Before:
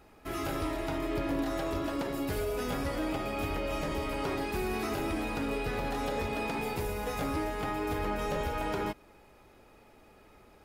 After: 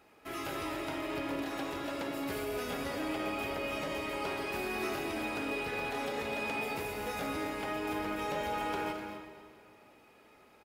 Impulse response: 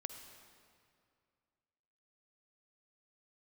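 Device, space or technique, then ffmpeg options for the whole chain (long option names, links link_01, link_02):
stadium PA: -filter_complex "[0:a]highpass=frequency=240:poles=1,equalizer=frequency=2500:width_type=o:width=1:gain=3.5,aecho=1:1:218.7|253.6:0.282|0.282[link_01];[1:a]atrim=start_sample=2205[link_02];[link_01][link_02]afir=irnorm=-1:irlink=0"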